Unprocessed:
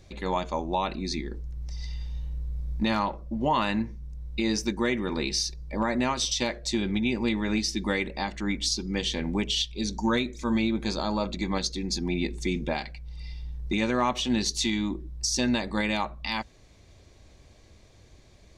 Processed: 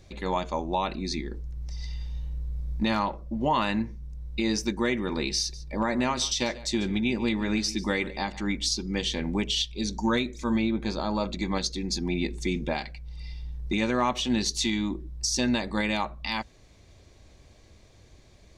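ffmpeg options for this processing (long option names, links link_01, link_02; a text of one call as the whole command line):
ffmpeg -i in.wav -filter_complex "[0:a]asettb=1/sr,asplit=3[link_01][link_02][link_03];[link_01]atrim=end=5.394[link_04];[link_02]atrim=start=5.39:end=8.47,asetpts=PTS-STARTPTS,afade=type=in:duration=0.004:curve=qsin,afade=type=out:start_time=3.076:duration=0.004:curve=qsin,aecho=1:1:145:0.126,atrim=end_sample=135828[link_05];[link_03]atrim=start=8.466[link_06];[link_04][link_05]acrossfade=duration=0.004:curve1=hsin:curve2=qsin[link_07];[link_07][link_06]acrossfade=duration=0.004:curve1=qsin:curve2=hsin,asettb=1/sr,asplit=3[link_08][link_09][link_10];[link_08]atrim=end=10.564[link_11];[link_09]atrim=start=10.56:end=11.15,asetpts=PTS-STARTPTS,afade=type=in:duration=0.004:curve=qsin,afade=type=out:start_time=0.586:duration=0.004:curve=qsin,lowpass=frequency=3200:poles=1[link_12];[link_10]atrim=start=11.146[link_13];[link_11][link_12]acrossfade=duration=0.004:curve1=hsin:curve2=qsin[link_14];[link_14][link_13]acrossfade=duration=0.004:curve1=qsin:curve2=hsin" out.wav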